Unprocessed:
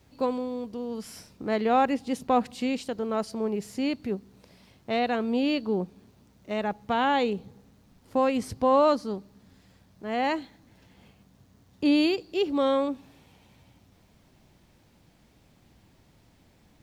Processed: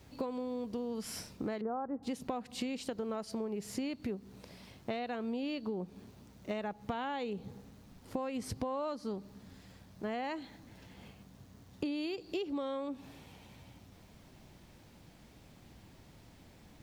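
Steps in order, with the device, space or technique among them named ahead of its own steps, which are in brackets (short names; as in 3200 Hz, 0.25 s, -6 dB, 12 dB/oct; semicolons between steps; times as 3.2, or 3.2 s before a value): 1.61–2.03 steep low-pass 1400 Hz 36 dB/oct; serial compression, leveller first (compressor 2:1, threshold -29 dBFS, peak gain reduction 7 dB; compressor 10:1, threshold -36 dBFS, peak gain reduction 13 dB); gain +2.5 dB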